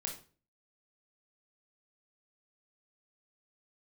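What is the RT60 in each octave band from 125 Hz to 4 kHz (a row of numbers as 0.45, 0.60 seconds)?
0.55, 0.50, 0.45, 0.35, 0.35, 0.30 seconds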